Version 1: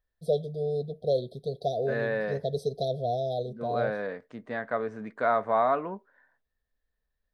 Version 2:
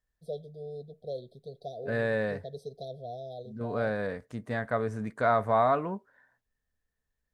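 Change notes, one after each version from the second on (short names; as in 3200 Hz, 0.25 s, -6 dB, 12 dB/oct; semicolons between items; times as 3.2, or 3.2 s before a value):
first voice -11.0 dB; second voice: remove BPF 230–3600 Hz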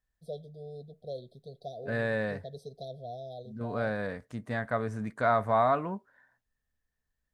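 master: add bell 440 Hz -4 dB 0.64 oct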